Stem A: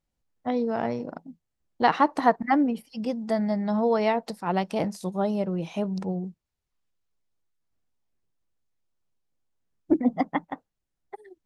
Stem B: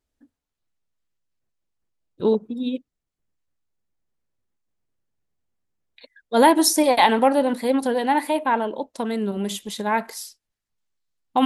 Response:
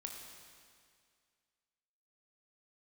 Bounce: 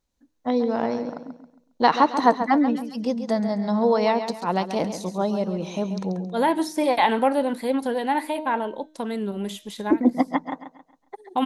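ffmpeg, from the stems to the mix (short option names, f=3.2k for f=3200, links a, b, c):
-filter_complex "[0:a]equalizer=f=125:t=o:w=0.33:g=-10,equalizer=f=250:t=o:w=0.33:g=4,equalizer=f=500:t=o:w=0.33:g=4,equalizer=f=1k:t=o:w=0.33:g=5,equalizer=f=4k:t=o:w=0.33:g=8,equalizer=f=6.3k:t=o:w=0.33:g=9,volume=0.5dB,asplit=3[a][b][c];[b]volume=-10dB[d];[1:a]bandreject=f=309.4:t=h:w=4,bandreject=f=618.8:t=h:w=4,bandreject=f=928.2:t=h:w=4,bandreject=f=1.2376k:t=h:w=4,bandreject=f=1.547k:t=h:w=4,bandreject=f=1.8564k:t=h:w=4,bandreject=f=2.1658k:t=h:w=4,bandreject=f=2.4752k:t=h:w=4,bandreject=f=2.7846k:t=h:w=4,bandreject=f=3.094k:t=h:w=4,bandreject=f=3.4034k:t=h:w=4,bandreject=f=3.7128k:t=h:w=4,bandreject=f=4.0222k:t=h:w=4,bandreject=f=4.3316k:t=h:w=4,bandreject=f=4.641k:t=h:w=4,bandreject=f=4.9504k:t=h:w=4,bandreject=f=5.2598k:t=h:w=4,bandreject=f=5.5692k:t=h:w=4,bandreject=f=5.8786k:t=h:w=4,bandreject=f=6.188k:t=h:w=4,acrossover=split=3600[e][f];[f]acompressor=threshold=-36dB:ratio=4:attack=1:release=60[g];[e][g]amix=inputs=2:normalize=0,volume=-3dB[h];[c]apad=whole_len=505363[i];[h][i]sidechaincompress=threshold=-29dB:ratio=12:attack=27:release=1140[j];[d]aecho=0:1:136|272|408|544|680:1|0.35|0.122|0.0429|0.015[k];[a][j][k]amix=inputs=3:normalize=0"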